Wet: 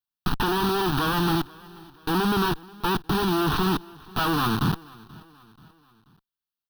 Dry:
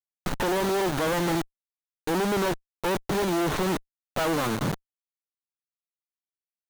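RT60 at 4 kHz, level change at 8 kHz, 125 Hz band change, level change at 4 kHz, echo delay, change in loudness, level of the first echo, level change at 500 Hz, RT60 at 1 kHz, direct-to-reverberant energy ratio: none, -3.5 dB, +5.0 dB, +5.0 dB, 0.483 s, +2.0 dB, -23.0 dB, -2.5 dB, none, none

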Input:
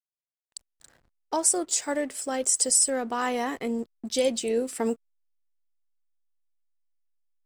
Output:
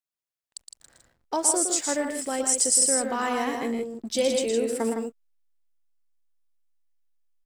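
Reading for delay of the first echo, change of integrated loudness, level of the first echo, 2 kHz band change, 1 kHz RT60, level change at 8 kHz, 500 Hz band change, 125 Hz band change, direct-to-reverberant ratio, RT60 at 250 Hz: 0.115 s, +1.5 dB, -6.5 dB, +1.5 dB, none, +1.5 dB, +1.5 dB, n/a, none, none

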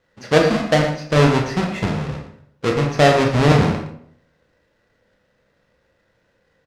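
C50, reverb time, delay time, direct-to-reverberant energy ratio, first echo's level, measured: 4.5 dB, 0.60 s, 0.115 s, 0.5 dB, -11.0 dB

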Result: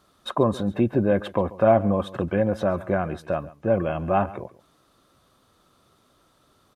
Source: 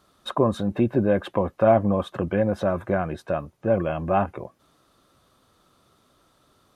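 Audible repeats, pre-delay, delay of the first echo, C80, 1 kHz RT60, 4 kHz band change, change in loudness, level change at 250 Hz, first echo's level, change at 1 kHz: 1, none, 0.138 s, none, none, 0.0 dB, 0.0 dB, 0.0 dB, -19.0 dB, 0.0 dB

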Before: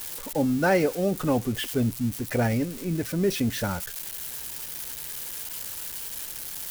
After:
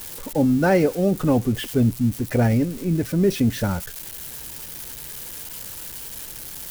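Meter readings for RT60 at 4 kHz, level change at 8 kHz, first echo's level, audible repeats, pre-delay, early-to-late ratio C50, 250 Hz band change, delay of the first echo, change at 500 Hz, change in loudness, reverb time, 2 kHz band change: none, 0.0 dB, none, none, none, none, +6.0 dB, none, +4.0 dB, +4.5 dB, none, +0.5 dB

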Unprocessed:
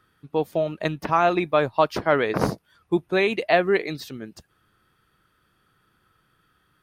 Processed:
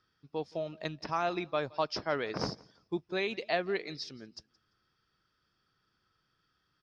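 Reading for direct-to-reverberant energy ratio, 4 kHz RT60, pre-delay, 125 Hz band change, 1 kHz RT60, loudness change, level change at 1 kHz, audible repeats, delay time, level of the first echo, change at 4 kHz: none, none, none, -12.5 dB, none, -12.0 dB, -12.0 dB, 1, 0.171 s, -24.0 dB, -5.5 dB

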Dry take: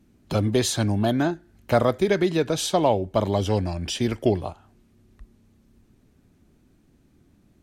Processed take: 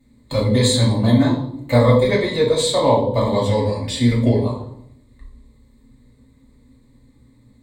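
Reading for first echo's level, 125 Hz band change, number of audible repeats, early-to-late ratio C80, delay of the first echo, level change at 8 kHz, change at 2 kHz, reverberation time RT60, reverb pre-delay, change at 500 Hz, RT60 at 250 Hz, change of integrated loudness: none, +8.5 dB, none, 9.0 dB, none, +3.5 dB, +4.5 dB, 0.75 s, 3 ms, +5.5 dB, 1.0 s, +6.0 dB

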